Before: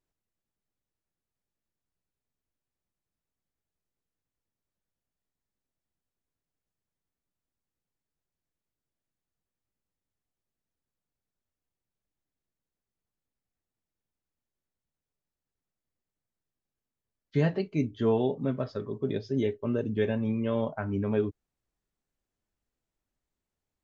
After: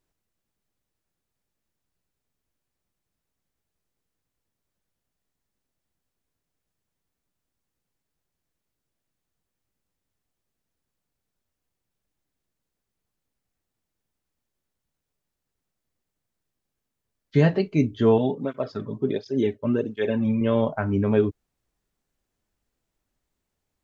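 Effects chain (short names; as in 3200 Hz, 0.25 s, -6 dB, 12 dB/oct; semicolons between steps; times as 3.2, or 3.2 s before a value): 18.18–20.41 tape flanging out of phase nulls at 1.4 Hz, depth 2.9 ms; gain +7 dB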